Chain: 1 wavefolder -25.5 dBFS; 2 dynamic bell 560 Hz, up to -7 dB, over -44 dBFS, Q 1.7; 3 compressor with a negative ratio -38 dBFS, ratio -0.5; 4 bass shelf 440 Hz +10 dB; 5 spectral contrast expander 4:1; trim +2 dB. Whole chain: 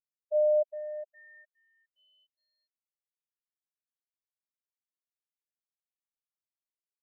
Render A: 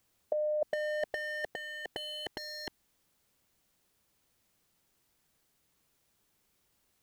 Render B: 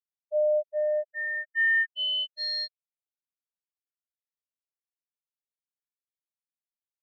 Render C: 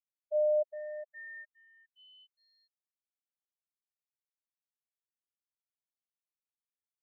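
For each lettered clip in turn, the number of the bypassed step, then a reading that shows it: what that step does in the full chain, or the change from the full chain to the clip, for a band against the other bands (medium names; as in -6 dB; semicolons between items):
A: 5, momentary loudness spread change -9 LU; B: 3, crest factor change -4.5 dB; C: 4, loudness change -4.5 LU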